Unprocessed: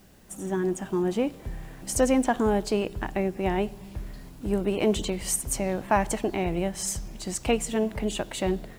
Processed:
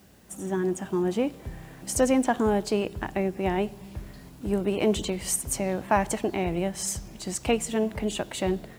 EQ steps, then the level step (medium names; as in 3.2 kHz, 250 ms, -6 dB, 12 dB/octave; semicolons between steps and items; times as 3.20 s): high-pass 49 Hz 24 dB/octave; 0.0 dB